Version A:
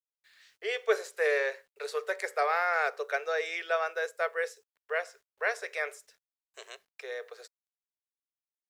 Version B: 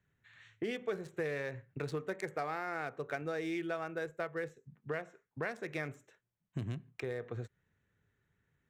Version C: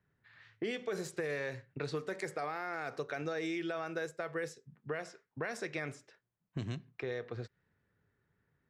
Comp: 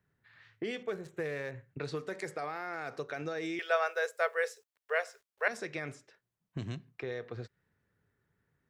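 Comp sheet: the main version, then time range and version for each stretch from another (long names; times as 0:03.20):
C
0:00.83–0:01.78: punch in from B
0:03.59–0:05.48: punch in from A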